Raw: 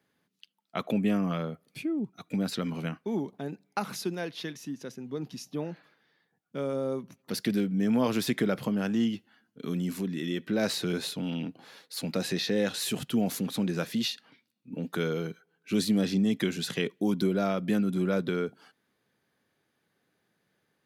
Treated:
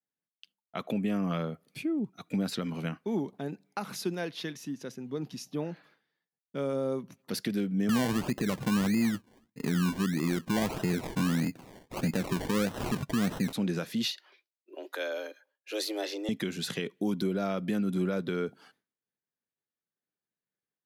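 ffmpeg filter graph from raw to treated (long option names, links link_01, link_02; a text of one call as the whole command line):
ffmpeg -i in.wav -filter_complex "[0:a]asettb=1/sr,asplit=3[link_01][link_02][link_03];[link_01]atrim=end=7.894[link_04];[link_02]atrim=start=7.89:end=13.53,asetpts=PTS-STARTPTS,afade=type=in:duration=0.004:curve=qsin,afade=type=out:start_time=5.636:duration=0.004:curve=qsin,lowshelf=frequency=240:gain=11,acrusher=samples=27:mix=1:aa=0.000001:lfo=1:lforange=16.2:lforate=1.6[link_05];[link_03]atrim=start=13.526[link_06];[link_04][link_05]acrossfade=duration=0.004:curve1=hsin:curve2=qsin[link_07];[link_07][link_06]acrossfade=duration=0.004:curve1=qsin:curve2=hsin,asettb=1/sr,asplit=3[link_08][link_09][link_10];[link_08]atrim=end=14.114[link_11];[link_09]atrim=start=14.11:end=16.29,asetpts=PTS-STARTPTS,afade=type=in:duration=0.004:curve=qsin,afade=type=out:start_time=2.176:duration=0.004:curve=qsin,highpass=430,equalizer=frequency=8400:width_type=o:width=0.43:gain=-6,afreqshift=110[link_12];[link_10]atrim=start=16.286[link_13];[link_11][link_12]acrossfade=duration=0.004:curve1=hsin:curve2=qsin[link_14];[link_14][link_13]acrossfade=duration=0.004:curve1=qsin:curve2=hsin,alimiter=limit=-20.5dB:level=0:latency=1:release=278,agate=range=-33dB:threshold=-60dB:ratio=3:detection=peak" out.wav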